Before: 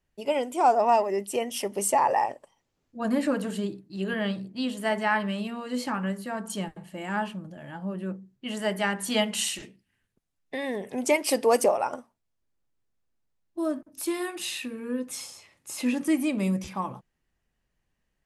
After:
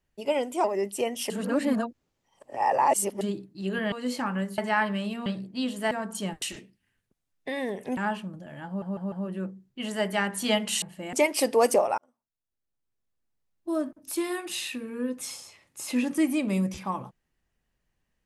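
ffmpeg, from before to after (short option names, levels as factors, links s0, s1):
-filter_complex "[0:a]asplit=16[s0][s1][s2][s3][s4][s5][s6][s7][s8][s9][s10][s11][s12][s13][s14][s15];[s0]atrim=end=0.642[s16];[s1]atrim=start=0.988:end=1.652[s17];[s2]atrim=start=1.648:end=3.562,asetpts=PTS-STARTPTS,areverse[s18];[s3]atrim=start=3.558:end=4.272[s19];[s4]atrim=start=5.598:end=6.262[s20];[s5]atrim=start=4.918:end=5.602[s21];[s6]atrim=start=4.268:end=4.922[s22];[s7]atrim=start=6.258:end=6.772[s23];[s8]atrim=start=9.478:end=11.032[s24];[s9]atrim=start=7.078:end=7.932[s25];[s10]atrim=start=7.778:end=7.932[s26];[s11]atrim=start=7.778:end=7.932[s27];[s12]atrim=start=7.778:end=9.482[s28];[s13]atrim=start=6.768:end=7.082[s29];[s14]atrim=start=11.028:end=11.88,asetpts=PTS-STARTPTS,afade=t=out:st=0.848:d=0.004:c=hsin[s30];[s15]atrim=start=11.88,asetpts=PTS-STARTPTS,afade=t=in:d=1.71[s31];[s16][s17]acrossfade=d=0.004:c1=hsin:c2=hsin[s32];[s32][s18]acrossfade=d=0.004:c1=hsin:c2=hsin[s33];[s33][s19]acrossfade=d=0.004:c1=hsin:c2=hsin[s34];[s34][s20]acrossfade=d=0.004:c1=hsin:c2=hsin[s35];[s35][s21]acrossfade=d=0.004:c1=hsin:c2=hsin[s36];[s36][s22]acrossfade=d=0.004:c1=hsin:c2=hsin[s37];[s37][s23]acrossfade=d=0.004:c1=hsin:c2=hsin[s38];[s38][s24]acrossfade=d=0.004:c1=hsin:c2=hsin[s39];[s39][s25]acrossfade=d=0.004:c1=hsin:c2=hsin[s40];[s40][s26]acrossfade=d=0.004:c1=hsin:c2=hsin[s41];[s41][s27]acrossfade=d=0.004:c1=hsin:c2=hsin[s42];[s42][s28]acrossfade=d=0.004:c1=hsin:c2=hsin[s43];[s43][s29]acrossfade=d=0.004:c1=hsin:c2=hsin[s44];[s30][s31]concat=n=2:v=0:a=1[s45];[s44][s45]acrossfade=d=0.004:c1=hsin:c2=hsin"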